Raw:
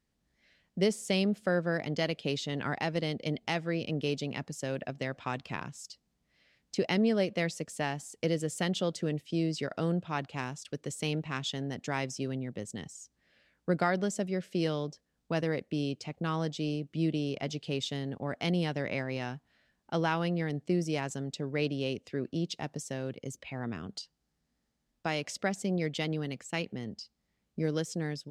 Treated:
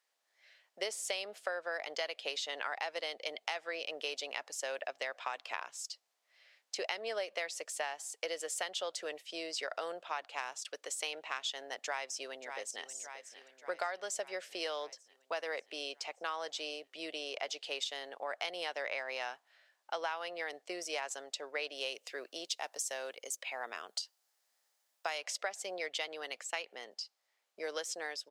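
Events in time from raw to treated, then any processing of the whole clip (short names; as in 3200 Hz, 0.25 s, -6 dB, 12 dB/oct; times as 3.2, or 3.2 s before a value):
11.75–12.89 echo throw 0.58 s, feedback 65%, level -13.5 dB
21.75–25.18 high shelf 7200 Hz +11 dB
whole clip: HPF 590 Hz 24 dB/oct; compressor 6:1, threshold -37 dBFS; gain +3.5 dB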